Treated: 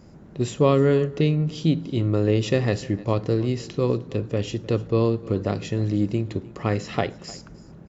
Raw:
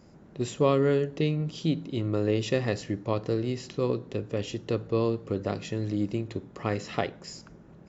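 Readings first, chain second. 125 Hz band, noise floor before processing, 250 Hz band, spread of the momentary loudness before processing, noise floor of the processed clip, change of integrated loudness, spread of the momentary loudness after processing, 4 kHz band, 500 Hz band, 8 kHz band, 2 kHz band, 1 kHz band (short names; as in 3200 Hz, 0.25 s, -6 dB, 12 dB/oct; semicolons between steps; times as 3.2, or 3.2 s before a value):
+7.5 dB, -52 dBFS, +5.5 dB, 9 LU, -46 dBFS, +5.5 dB, 9 LU, +3.5 dB, +4.5 dB, n/a, +3.5 dB, +4.0 dB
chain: low shelf 180 Hz +6 dB; echo 0.305 s -20.5 dB; gain +3.5 dB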